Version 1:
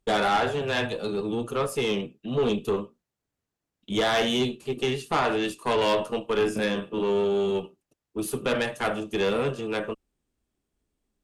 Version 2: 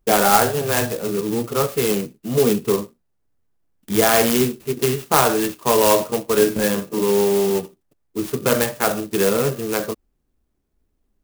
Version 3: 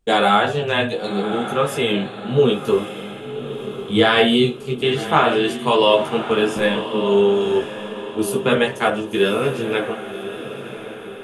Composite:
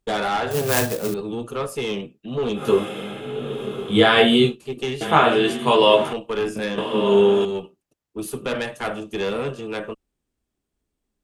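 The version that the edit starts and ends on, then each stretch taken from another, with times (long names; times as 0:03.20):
1
0:00.51–0:01.14: punch in from 2
0:02.58–0:04.51: punch in from 3, crossfade 0.10 s
0:05.01–0:06.13: punch in from 3
0:06.78–0:07.45: punch in from 3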